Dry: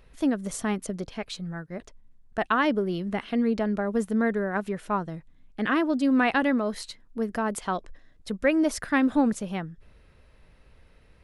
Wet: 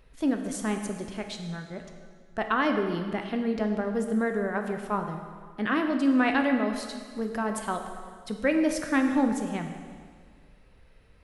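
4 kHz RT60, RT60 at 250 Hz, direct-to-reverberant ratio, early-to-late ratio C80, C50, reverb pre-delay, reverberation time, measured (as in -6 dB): 1.7 s, 1.7 s, 4.5 dB, 7.5 dB, 6.5 dB, 5 ms, 1.8 s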